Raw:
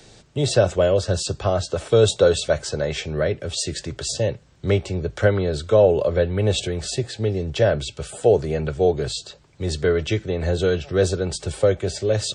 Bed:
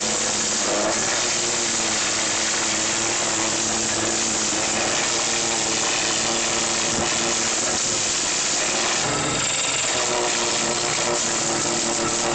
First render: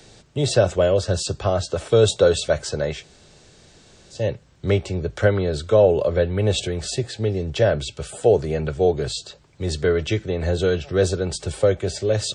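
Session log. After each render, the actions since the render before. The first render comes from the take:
0:02.97–0:04.18: fill with room tone, crossfade 0.16 s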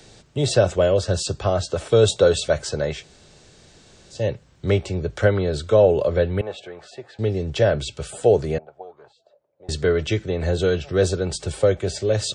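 0:06.41–0:07.19: resonant band-pass 1,000 Hz, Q 1.5
0:08.58–0:09.69: envelope filter 540–1,200 Hz, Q 7.6, up, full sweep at −14.5 dBFS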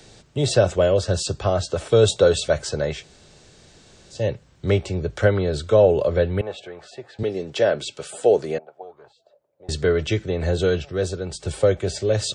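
0:07.23–0:08.83: high-pass filter 240 Hz
0:10.85–0:11.45: clip gain −5 dB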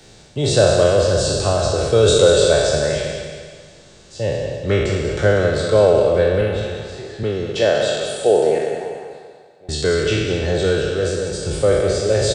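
peak hold with a decay on every bin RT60 1.45 s
on a send: repeating echo 194 ms, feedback 44%, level −8 dB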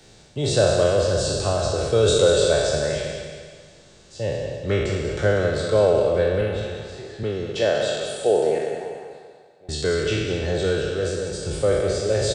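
level −4.5 dB

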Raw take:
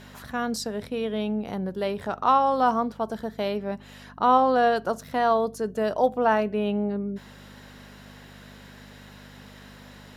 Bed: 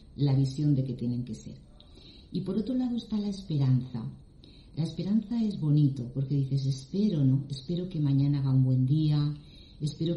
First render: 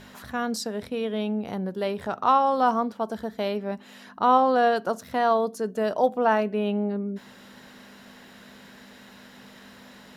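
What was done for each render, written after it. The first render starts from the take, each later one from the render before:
hum removal 50 Hz, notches 3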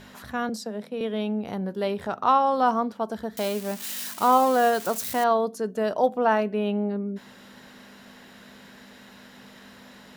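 0:00.49–0:01.01: Chebyshev high-pass with heavy ripple 150 Hz, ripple 6 dB
0:01.59–0:02.07: double-tracking delay 20 ms −13 dB
0:03.37–0:05.24: spike at every zero crossing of −24 dBFS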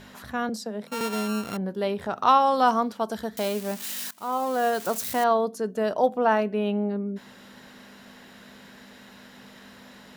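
0:00.87–0:01.57: samples sorted by size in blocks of 32 samples
0:02.16–0:03.30: high-shelf EQ 2,200 Hz +9 dB
0:04.11–0:04.95: fade in, from −20 dB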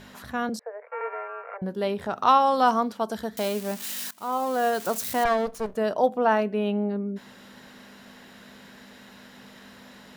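0:00.59–0:01.62: Chebyshev band-pass filter 450–2,300 Hz, order 5
0:05.25–0:05.77: lower of the sound and its delayed copy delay 1.7 ms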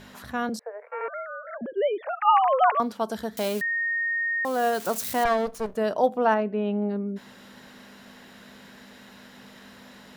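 0:01.08–0:02.80: three sine waves on the formant tracks
0:03.61–0:04.45: beep over 1,850 Hz −23.5 dBFS
0:06.34–0:06.82: head-to-tape spacing loss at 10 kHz 22 dB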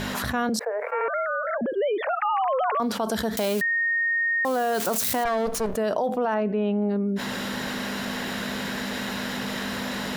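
brickwall limiter −19 dBFS, peak gain reduction 10.5 dB
envelope flattener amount 70%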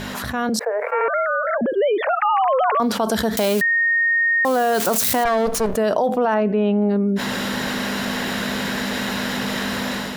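automatic gain control gain up to 6 dB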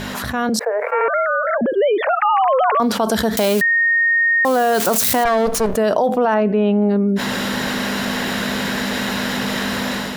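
level +2.5 dB

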